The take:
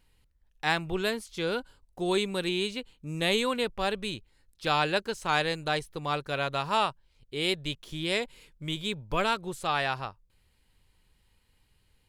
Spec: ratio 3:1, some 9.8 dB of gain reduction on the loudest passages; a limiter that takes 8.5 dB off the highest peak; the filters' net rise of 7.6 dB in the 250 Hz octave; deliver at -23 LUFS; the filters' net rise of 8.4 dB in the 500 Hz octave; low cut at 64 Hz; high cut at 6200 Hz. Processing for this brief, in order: HPF 64 Hz; LPF 6200 Hz; bell 250 Hz +8 dB; bell 500 Hz +8 dB; compressor 3:1, threshold -30 dBFS; gain +13.5 dB; limiter -12.5 dBFS

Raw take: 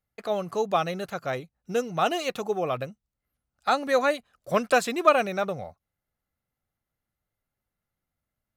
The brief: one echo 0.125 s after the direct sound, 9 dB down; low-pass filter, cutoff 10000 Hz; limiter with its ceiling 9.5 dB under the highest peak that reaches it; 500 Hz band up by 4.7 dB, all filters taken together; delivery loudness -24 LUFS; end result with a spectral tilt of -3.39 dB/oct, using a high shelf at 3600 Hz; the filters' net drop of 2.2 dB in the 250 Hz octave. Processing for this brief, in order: LPF 10000 Hz; bell 250 Hz -5.5 dB; bell 500 Hz +6.5 dB; high shelf 3600 Hz +7.5 dB; limiter -12 dBFS; echo 0.125 s -9 dB; gain +1 dB

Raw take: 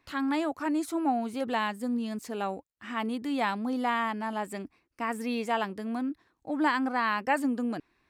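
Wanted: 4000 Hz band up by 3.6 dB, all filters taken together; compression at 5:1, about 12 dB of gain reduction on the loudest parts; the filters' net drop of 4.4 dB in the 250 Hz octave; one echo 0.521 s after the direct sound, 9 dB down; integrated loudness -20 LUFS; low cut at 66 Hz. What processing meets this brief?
HPF 66 Hz; bell 250 Hz -5 dB; bell 4000 Hz +5 dB; compressor 5:1, threshold -35 dBFS; echo 0.521 s -9 dB; gain +19 dB

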